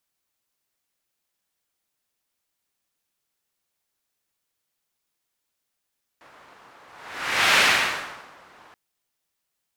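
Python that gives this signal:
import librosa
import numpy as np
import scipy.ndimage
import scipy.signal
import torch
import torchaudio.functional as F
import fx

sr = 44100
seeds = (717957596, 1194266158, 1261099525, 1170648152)

y = fx.whoosh(sr, seeds[0], length_s=2.53, peak_s=1.37, rise_s=0.8, fall_s=0.89, ends_hz=1100.0, peak_hz=2200.0, q=1.2, swell_db=33.5)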